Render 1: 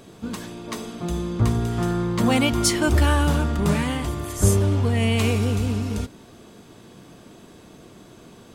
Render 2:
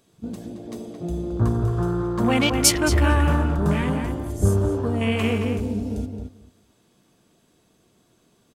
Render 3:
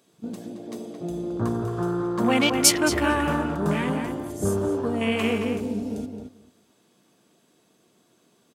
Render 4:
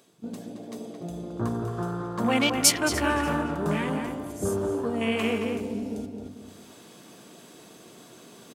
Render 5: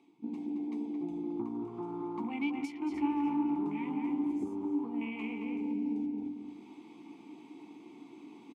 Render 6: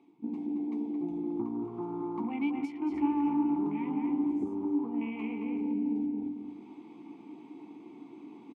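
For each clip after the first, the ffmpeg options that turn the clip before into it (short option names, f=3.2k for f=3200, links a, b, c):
-filter_complex "[0:a]afwtdn=0.0355,highshelf=f=3.6k:g=8.5,asplit=2[a][b];[b]adelay=221,lowpass=f=2.6k:p=1,volume=-5dB,asplit=2[c][d];[d]adelay=221,lowpass=f=2.6k:p=1,volume=0.15,asplit=2[e][f];[f]adelay=221,lowpass=f=2.6k:p=1,volume=0.15[g];[c][e][g]amix=inputs=3:normalize=0[h];[a][h]amix=inputs=2:normalize=0,volume=-1dB"
-af "highpass=180"
-af "bandreject=f=50:t=h:w=6,bandreject=f=100:t=h:w=6,bandreject=f=150:t=h:w=6,bandreject=f=200:t=h:w=6,bandreject=f=250:t=h:w=6,bandreject=f=300:t=h:w=6,bandreject=f=350:t=h:w=6,areverse,acompressor=mode=upward:threshold=-32dB:ratio=2.5,areverse,aecho=1:1:293|586:0.112|0.0281,volume=-2dB"
-filter_complex "[0:a]acompressor=threshold=-31dB:ratio=12,asplit=3[a][b][c];[a]bandpass=f=300:t=q:w=8,volume=0dB[d];[b]bandpass=f=870:t=q:w=8,volume=-6dB[e];[c]bandpass=f=2.24k:t=q:w=8,volume=-9dB[f];[d][e][f]amix=inputs=3:normalize=0,asplit=2[g][h];[h]adelay=14,volume=-11dB[i];[g][i]amix=inputs=2:normalize=0,volume=8.5dB"
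-af "highshelf=f=2.6k:g=-12,volume=3dB"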